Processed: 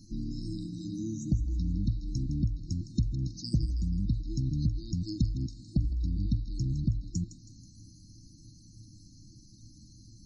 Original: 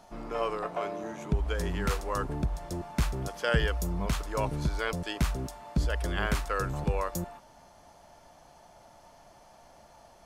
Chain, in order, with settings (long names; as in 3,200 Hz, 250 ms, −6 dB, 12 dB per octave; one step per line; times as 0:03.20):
brick-wall band-stop 340–3,700 Hz
treble cut that deepens with the level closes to 1,400 Hz, closed at −24 dBFS
parametric band 110 Hz +14.5 dB 0.27 octaves
downward compressor 2 to 1, threshold −40 dBFS, peak gain reduction 11.5 dB
spectral peaks only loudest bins 64
on a send: feedback echo with a high-pass in the loop 161 ms, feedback 50%, high-pass 680 Hz, level −11 dB
on the sum: level +8 dB